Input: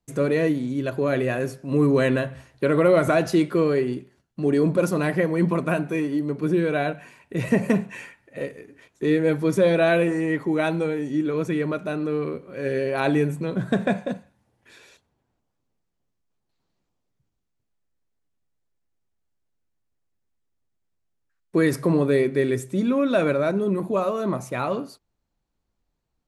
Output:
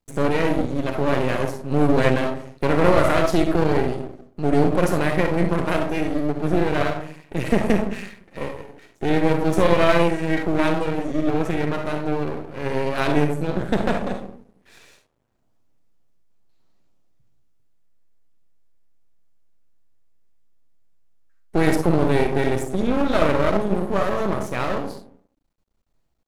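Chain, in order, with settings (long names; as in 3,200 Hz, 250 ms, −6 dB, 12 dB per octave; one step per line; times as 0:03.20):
comb and all-pass reverb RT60 0.52 s, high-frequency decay 0.3×, pre-delay 10 ms, DRR 3.5 dB
half-wave rectification
level +3.5 dB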